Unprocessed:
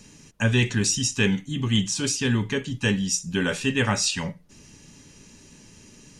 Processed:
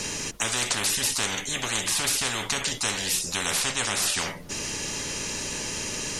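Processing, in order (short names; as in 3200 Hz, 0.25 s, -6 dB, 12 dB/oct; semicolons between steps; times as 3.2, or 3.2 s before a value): 3.61–4.02 LPF 9800 Hz 12 dB/oct; spectral compressor 10:1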